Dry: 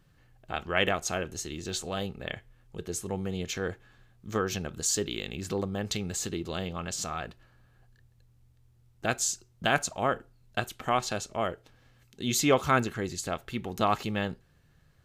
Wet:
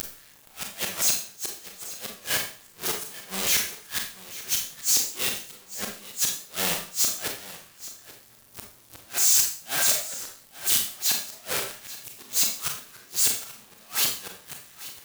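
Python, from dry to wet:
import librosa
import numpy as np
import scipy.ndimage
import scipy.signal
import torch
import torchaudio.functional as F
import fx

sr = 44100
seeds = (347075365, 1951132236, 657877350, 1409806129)

p1 = np.sign(x) * np.sqrt(np.mean(np.square(x)))
p2 = fx.tilt_eq(p1, sr, slope=3.5)
p3 = fx.transient(p2, sr, attack_db=-6, sustain_db=9)
p4 = fx.rider(p3, sr, range_db=3, speed_s=0.5)
p5 = p3 + F.gain(torch.from_numpy(p4), 0.5).numpy()
p6 = fx.gate_flip(p5, sr, shuts_db=-6.0, range_db=-29)
p7 = p6 + fx.echo_single(p6, sr, ms=833, db=-16.5, dry=0)
p8 = fx.rev_schroeder(p7, sr, rt60_s=0.44, comb_ms=28, drr_db=2.0)
p9 = fx.record_warp(p8, sr, rpm=45.0, depth_cents=100.0)
y = F.gain(torch.from_numpy(p9), -3.0).numpy()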